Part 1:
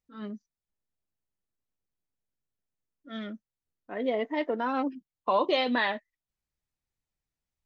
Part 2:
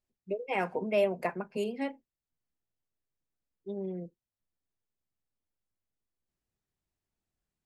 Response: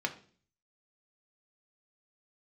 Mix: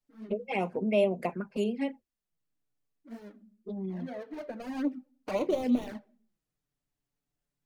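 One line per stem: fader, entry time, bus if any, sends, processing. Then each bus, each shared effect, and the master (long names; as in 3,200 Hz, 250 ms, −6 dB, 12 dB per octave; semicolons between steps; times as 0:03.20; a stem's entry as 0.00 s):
−1.5 dB, 0.00 s, send −10.5 dB, running median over 41 samples; parametric band 2,800 Hz −3 dB 0.85 octaves; automatic ducking −18 dB, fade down 0.50 s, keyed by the second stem
+2.5 dB, 0.00 s, no send, no processing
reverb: on, RT60 0.45 s, pre-delay 3 ms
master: parametric band 220 Hz +5 dB 0.43 octaves; notch filter 940 Hz, Q 27; flanger swept by the level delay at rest 7 ms, full sweep at −24.5 dBFS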